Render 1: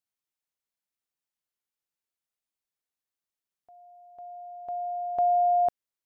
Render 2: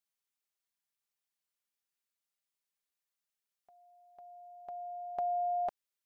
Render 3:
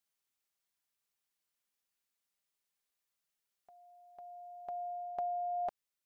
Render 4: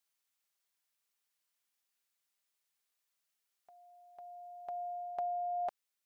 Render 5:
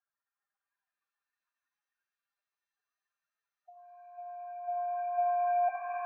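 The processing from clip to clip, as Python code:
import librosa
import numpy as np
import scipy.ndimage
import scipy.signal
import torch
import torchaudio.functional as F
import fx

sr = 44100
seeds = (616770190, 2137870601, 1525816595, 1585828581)

y1 = fx.tilt_shelf(x, sr, db=-4.0, hz=710.0)
y1 = y1 + 0.5 * np.pad(y1, (int(5.0 * sr / 1000.0), 0))[:len(y1)]
y1 = F.gain(torch.from_numpy(y1), -4.5).numpy()
y2 = fx.rider(y1, sr, range_db=4, speed_s=0.5)
y2 = F.gain(torch.from_numpy(y2), -1.5).numpy()
y3 = fx.low_shelf(y2, sr, hz=430.0, db=-9.0)
y3 = F.gain(torch.from_numpy(y3), 2.5).numpy()
y4 = fx.spec_expand(y3, sr, power=3.1)
y4 = fx.brickwall_lowpass(y4, sr, high_hz=1900.0)
y4 = fx.rev_shimmer(y4, sr, seeds[0], rt60_s=3.5, semitones=7, shimmer_db=-2, drr_db=5.5)
y4 = F.gain(torch.from_numpy(y4), 7.5).numpy()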